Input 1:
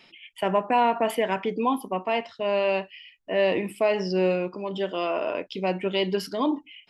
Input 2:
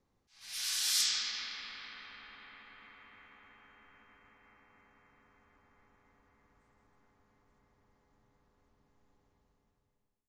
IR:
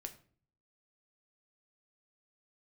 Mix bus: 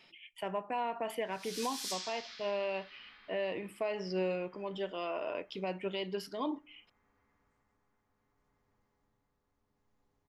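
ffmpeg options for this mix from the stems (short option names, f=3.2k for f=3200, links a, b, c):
-filter_complex "[0:a]equalizer=f=250:w=1.5:g=-3,volume=-8dB,asplit=2[a][b];[b]volume=-10dB[c];[1:a]flanger=delay=6.5:depth=5.3:regen=-64:speed=0.53:shape=triangular,adelay=900,volume=-1dB[d];[2:a]atrim=start_sample=2205[e];[c][e]afir=irnorm=-1:irlink=0[f];[a][d][f]amix=inputs=3:normalize=0,tremolo=f=0.69:d=0.32,alimiter=level_in=1dB:limit=-24dB:level=0:latency=1:release=424,volume=-1dB"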